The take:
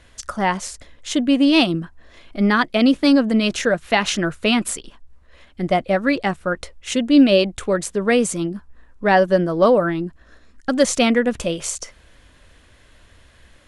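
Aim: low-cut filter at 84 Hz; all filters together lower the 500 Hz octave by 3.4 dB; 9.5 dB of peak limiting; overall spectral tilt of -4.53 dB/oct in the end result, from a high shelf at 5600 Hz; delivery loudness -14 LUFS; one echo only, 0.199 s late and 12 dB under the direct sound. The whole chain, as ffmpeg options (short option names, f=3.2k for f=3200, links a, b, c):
-af "highpass=84,equalizer=f=500:t=o:g=-4,highshelf=f=5.6k:g=-5.5,alimiter=limit=-14dB:level=0:latency=1,aecho=1:1:199:0.251,volume=10dB"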